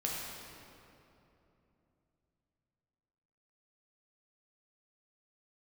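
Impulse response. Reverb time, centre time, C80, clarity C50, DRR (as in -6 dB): 3.0 s, 135 ms, 0.5 dB, -1.0 dB, -4.0 dB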